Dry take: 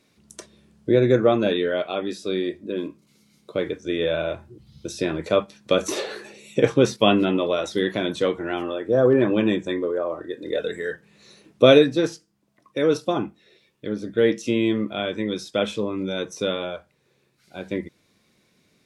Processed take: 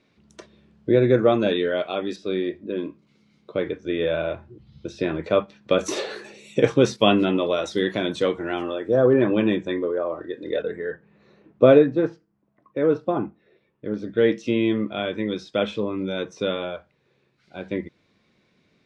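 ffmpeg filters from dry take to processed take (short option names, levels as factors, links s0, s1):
-af "asetnsamples=n=441:p=0,asendcmd='1.19 lowpass f 7400;2.16 lowpass f 3200;5.79 lowpass f 7900;8.96 lowpass f 3800;10.62 lowpass f 1500;13.94 lowpass f 3800',lowpass=3600"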